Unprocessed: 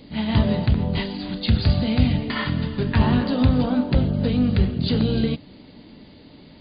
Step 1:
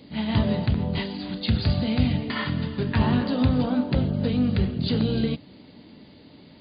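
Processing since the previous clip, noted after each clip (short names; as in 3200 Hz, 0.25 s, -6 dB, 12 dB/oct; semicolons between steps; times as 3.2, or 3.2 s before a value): HPF 70 Hz; gain -2.5 dB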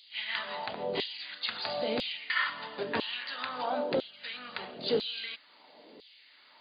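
LFO high-pass saw down 1 Hz 390–3600 Hz; gain -3 dB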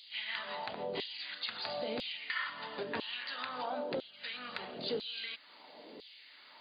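compressor 2:1, threshold -43 dBFS, peak gain reduction 11 dB; gain +2 dB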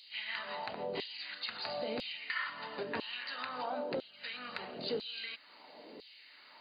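notch 3400 Hz, Q 7.7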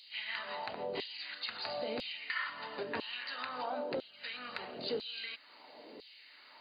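bell 180 Hz -4.5 dB 0.5 oct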